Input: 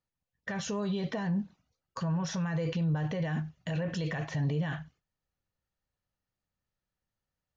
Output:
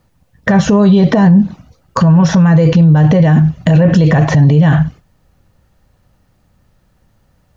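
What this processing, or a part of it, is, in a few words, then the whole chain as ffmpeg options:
mastering chain: -filter_complex "[0:a]equalizer=f=410:t=o:w=0.61:g=-3,acrossover=split=2000|4000[s0][s1][s2];[s0]acompressor=threshold=0.02:ratio=4[s3];[s1]acompressor=threshold=0.00158:ratio=4[s4];[s2]acompressor=threshold=0.00355:ratio=4[s5];[s3][s4][s5]amix=inputs=3:normalize=0,acompressor=threshold=0.00631:ratio=1.5,tiltshelf=f=1100:g=6,alimiter=level_in=35.5:limit=0.891:release=50:level=0:latency=1,volume=0.891"

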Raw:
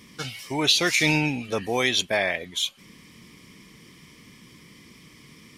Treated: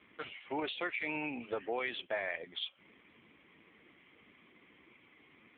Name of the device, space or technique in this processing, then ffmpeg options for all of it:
voicemail: -filter_complex "[0:a]asplit=3[s0][s1][s2];[s0]afade=t=out:st=1.59:d=0.02[s3];[s1]highpass=f=180:p=1,afade=t=in:st=1.59:d=0.02,afade=t=out:st=2.12:d=0.02[s4];[s2]afade=t=in:st=2.12:d=0.02[s5];[s3][s4][s5]amix=inputs=3:normalize=0,highpass=360,lowpass=2700,acompressor=threshold=0.0398:ratio=8,volume=0.708" -ar 8000 -c:a libopencore_amrnb -b:a 5900

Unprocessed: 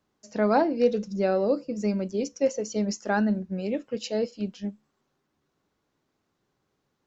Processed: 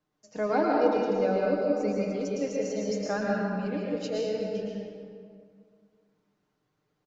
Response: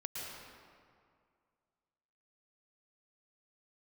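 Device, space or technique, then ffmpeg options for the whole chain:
swimming-pool hall: -filter_complex "[1:a]atrim=start_sample=2205[s0];[0:a][s0]afir=irnorm=-1:irlink=0,highshelf=f=5900:g=-4,aecho=1:1:6.6:0.54,volume=0.794"

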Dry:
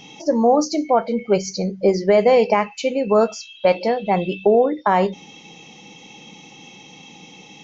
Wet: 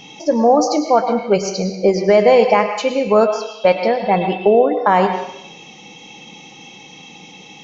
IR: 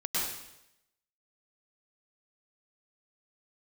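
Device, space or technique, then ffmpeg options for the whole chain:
filtered reverb send: -filter_complex "[0:a]asplit=2[s0][s1];[s1]highpass=430,lowpass=6200[s2];[1:a]atrim=start_sample=2205[s3];[s2][s3]afir=irnorm=-1:irlink=0,volume=0.251[s4];[s0][s4]amix=inputs=2:normalize=0,asettb=1/sr,asplit=3[s5][s6][s7];[s5]atrim=end=3.254[s8];[s6]atrim=start=3.25:end=4.73,asetpts=PTS-STARTPTS,afade=t=in:d=0.004:c=qsin,afade=t=out:st=1.476:d=0.004:c=qsin,lowpass=5300[s9];[s7]atrim=start=4.726[s10];[s8][s9]acrossfade=d=0.004:c1=hsin:c2=qsin[s11];[s11][s10]acrossfade=d=0.004:c1=qsin:c2=hsin,volume=1.26"

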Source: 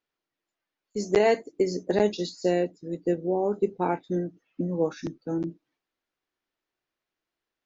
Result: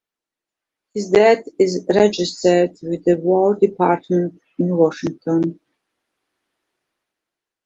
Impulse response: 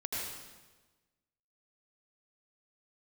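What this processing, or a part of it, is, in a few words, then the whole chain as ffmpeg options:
video call: -filter_complex "[0:a]asplit=3[s0][s1][s2];[s0]afade=t=out:st=1.56:d=0.02[s3];[s1]highshelf=f=6300:g=6,afade=t=in:st=1.56:d=0.02,afade=t=out:st=2.61:d=0.02[s4];[s2]afade=t=in:st=2.61:d=0.02[s5];[s3][s4][s5]amix=inputs=3:normalize=0,highpass=f=120:p=1,dynaudnorm=f=240:g=7:m=5.01" -ar 48000 -c:a libopus -b:a 32k

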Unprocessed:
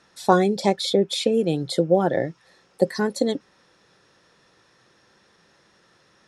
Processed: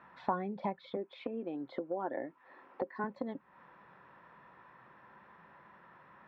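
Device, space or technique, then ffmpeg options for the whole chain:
bass amplifier: -filter_complex "[0:a]asettb=1/sr,asplit=3[s0][s1][s2];[s0]atrim=end=0.964[s3];[s1]atrim=start=0.96:end=3.04,asetpts=PTS-STARTPTS,afade=t=in:d=0.004:c=qsin,afade=t=out:st=2.076:d=0.004:c=qsin,lowshelf=f=210:t=q:w=3:g=-8.5[s4];[s2]atrim=start=3.036[s5];[s3][s4]acrossfade=d=0.004:c1=hsin:c2=qsin[s6];[s6][s5]acrossfade=d=0.004:c1=qsin:c2=hsin,acompressor=threshold=0.0158:ratio=4,highpass=61,equalizer=f=100:t=q:w=4:g=-9,equalizer=f=320:t=q:w=4:g=-5,equalizer=f=450:t=q:w=4:g=-7,equalizer=f=990:t=q:w=4:g=10,lowpass=f=2200:w=0.5412,lowpass=f=2200:w=1.3066,volume=1.12"

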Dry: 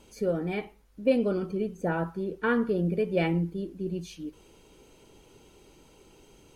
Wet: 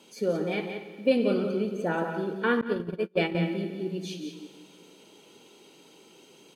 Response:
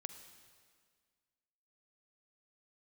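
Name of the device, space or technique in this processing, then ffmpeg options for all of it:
PA in a hall: -filter_complex "[0:a]highpass=f=170:w=0.5412,highpass=f=170:w=1.3066,equalizer=f=3600:t=o:w=0.98:g=6.5,aecho=1:1:178:0.398[s0];[1:a]atrim=start_sample=2205[s1];[s0][s1]afir=irnorm=-1:irlink=0,asettb=1/sr,asplit=3[s2][s3][s4];[s2]atrim=end=2.614[s5];[s3]atrim=start=2.61:end=3.35,asetpts=PTS-STARTPTS,afade=t=in:d=0.004:c=qsin,afade=t=out:st=0.736:d=0.004:c=qsin,agate=range=0.0158:threshold=0.0398:ratio=16:detection=peak[s6];[s4]atrim=start=3.346[s7];[s5][s6]acrossfade=d=0.004:c1=hsin:c2=qsin[s8];[s8][s7]acrossfade=d=0.004:c1=qsin:c2=hsin,volume=1.68"

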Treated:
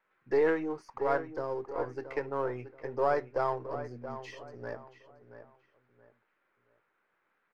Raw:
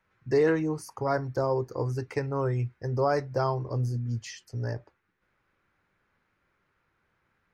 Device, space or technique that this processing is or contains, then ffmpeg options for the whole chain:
crystal radio: -filter_complex "[0:a]asettb=1/sr,asplit=3[s0][s1][s2];[s0]atrim=end=1.224[s3];[s1]atrim=start=1.22:end=1.64,asetpts=PTS-STARTPTS,afade=t=in:d=0.004:c=qsin,afade=t=out:st=0.416:d=0.004:c=qsin,equalizer=f=770:w=0.76:g=-8[s4];[s2]atrim=start=1.636[s5];[s3][s4]acrossfade=d=0.004:c1=hsin:c2=qsin[s6];[s6][s5]acrossfade=d=0.004:c1=qsin:c2=hsin,highpass=360,lowpass=2700,aeval=exprs='if(lt(val(0),0),0.708*val(0),val(0))':c=same,asplit=2[s7][s8];[s8]adelay=677,lowpass=f=2600:p=1,volume=0.282,asplit=2[s9][s10];[s10]adelay=677,lowpass=f=2600:p=1,volume=0.31,asplit=2[s11][s12];[s12]adelay=677,lowpass=f=2600:p=1,volume=0.31[s13];[s7][s9][s11][s13]amix=inputs=4:normalize=0"

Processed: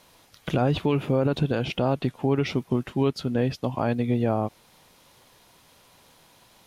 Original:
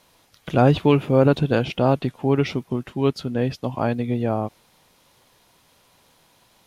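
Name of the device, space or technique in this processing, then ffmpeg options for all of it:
stacked limiters: -af "alimiter=limit=0.251:level=0:latency=1:release=66,alimiter=limit=0.158:level=0:latency=1:release=405,volume=1.26"

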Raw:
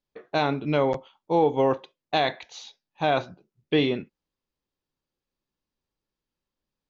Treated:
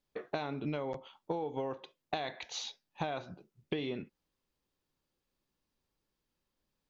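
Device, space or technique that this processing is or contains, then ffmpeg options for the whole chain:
serial compression, leveller first: -af "acompressor=threshold=0.0501:ratio=2.5,acompressor=threshold=0.0178:ratio=10,volume=1.33"

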